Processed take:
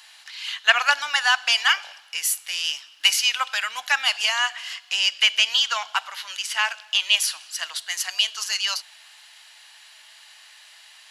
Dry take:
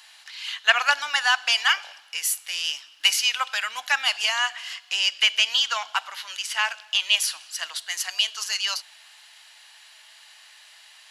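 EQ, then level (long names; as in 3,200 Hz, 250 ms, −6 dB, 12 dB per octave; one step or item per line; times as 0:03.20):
parametric band 320 Hz −2 dB 2 octaves
+1.5 dB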